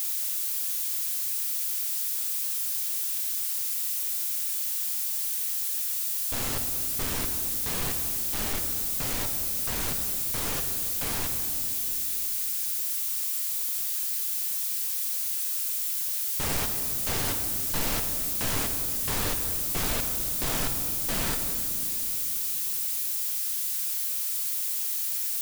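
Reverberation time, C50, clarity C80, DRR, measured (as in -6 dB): 2.9 s, 7.0 dB, 8.0 dB, 5.0 dB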